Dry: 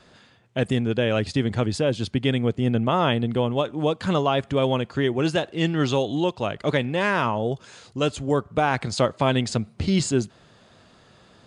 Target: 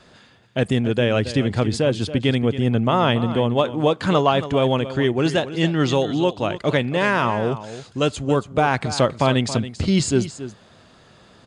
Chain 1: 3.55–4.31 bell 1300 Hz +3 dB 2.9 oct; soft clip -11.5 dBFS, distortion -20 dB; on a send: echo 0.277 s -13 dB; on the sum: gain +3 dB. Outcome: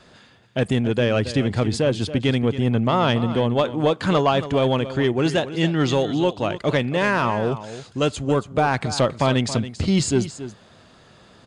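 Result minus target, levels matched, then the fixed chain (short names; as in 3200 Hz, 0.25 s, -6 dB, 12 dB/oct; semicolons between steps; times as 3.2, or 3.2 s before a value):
soft clip: distortion +16 dB
3.55–4.31 bell 1300 Hz +3 dB 2.9 oct; soft clip -2 dBFS, distortion -37 dB; on a send: echo 0.277 s -13 dB; on the sum: gain +3 dB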